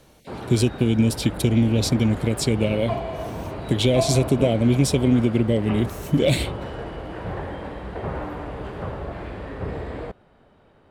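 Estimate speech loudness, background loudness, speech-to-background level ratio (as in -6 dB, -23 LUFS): -21.0 LUFS, -32.0 LUFS, 11.0 dB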